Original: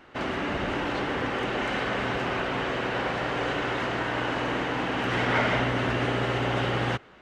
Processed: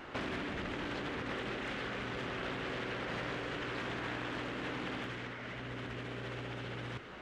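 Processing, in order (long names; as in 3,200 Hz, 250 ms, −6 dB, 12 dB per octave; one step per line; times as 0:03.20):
dynamic equaliser 800 Hz, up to −7 dB, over −44 dBFS, Q 1.4
compressor whose output falls as the input rises −37 dBFS, ratio −1
highs frequency-modulated by the lows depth 0.4 ms
level −3 dB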